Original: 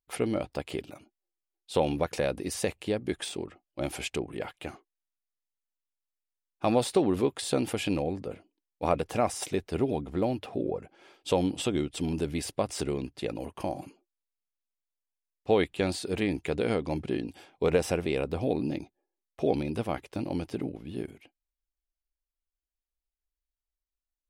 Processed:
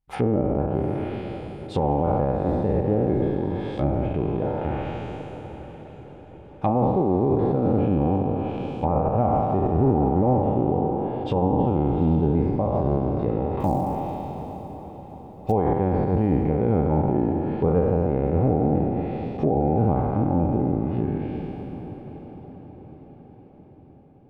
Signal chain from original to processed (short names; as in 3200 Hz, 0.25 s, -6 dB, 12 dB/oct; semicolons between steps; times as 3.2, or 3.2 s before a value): spectral trails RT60 2.74 s; limiter -15.5 dBFS, peak gain reduction 8 dB; treble ducked by the level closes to 900 Hz, closed at -25 dBFS; tone controls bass +13 dB, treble -8 dB; notch 690 Hz, Q 15; 13.6–15.52 short-mantissa float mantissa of 4-bit; bell 800 Hz +11 dB 0.48 oct; diffused feedback echo 0.842 s, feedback 51%, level -13.5 dB